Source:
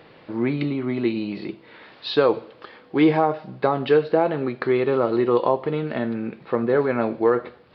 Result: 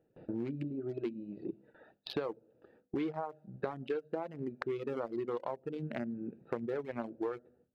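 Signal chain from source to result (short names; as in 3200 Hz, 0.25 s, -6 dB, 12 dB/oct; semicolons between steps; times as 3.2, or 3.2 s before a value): Wiener smoothing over 41 samples; gate with hold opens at -43 dBFS; notches 50/100/150/200/250 Hz; reverb removal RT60 1.8 s; compressor 6:1, threshold -36 dBFS, peak gain reduction 20.5 dB; gain +1 dB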